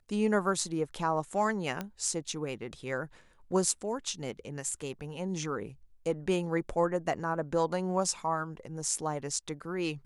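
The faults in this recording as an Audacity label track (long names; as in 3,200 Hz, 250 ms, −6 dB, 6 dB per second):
1.810000	1.810000	click −20 dBFS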